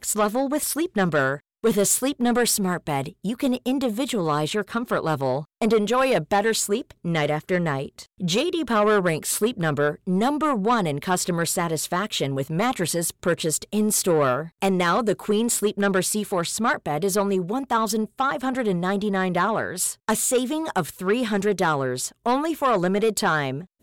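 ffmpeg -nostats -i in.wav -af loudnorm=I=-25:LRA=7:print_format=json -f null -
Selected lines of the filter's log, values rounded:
"input_i" : "-23.1",
"input_tp" : "-10.8",
"input_lra" : "1.5",
"input_thresh" : "-33.2",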